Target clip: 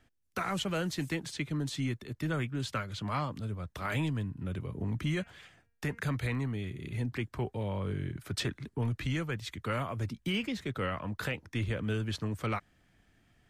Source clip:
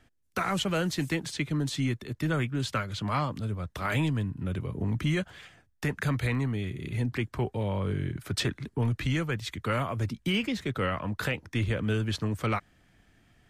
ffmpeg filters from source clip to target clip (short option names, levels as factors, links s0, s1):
-filter_complex "[0:a]asettb=1/sr,asplit=3[s0][s1][s2];[s0]atrim=end=5.144[s3];[s1]atrim=start=5.14:end=6,asetpts=PTS-STARTPTS,afade=t=in:d=0.004:c=qsin,afade=t=out:st=0.856:d=0.004:c=qsin,bandreject=f=233.4:t=h:w=4,bandreject=f=466.8:t=h:w=4,bandreject=f=700.2:t=h:w=4,bandreject=f=933.6:t=h:w=4,bandreject=f=1167:t=h:w=4,bandreject=f=1400.4:t=h:w=4,bandreject=f=1633.8:t=h:w=4,bandreject=f=1867.2:t=h:w=4,bandreject=f=2100.6:t=h:w=4,bandreject=f=2334:t=h:w=4,bandreject=f=2567.4:t=h:w=4,bandreject=f=2800.8:t=h:w=4[s4];[s2]atrim=start=5.996[s5];[s3][s4]acrossfade=d=0.004:c1=hsin:c2=qsin[s6];[s6][s5]acrossfade=d=0.004:c1=qsin:c2=hsin,volume=0.596"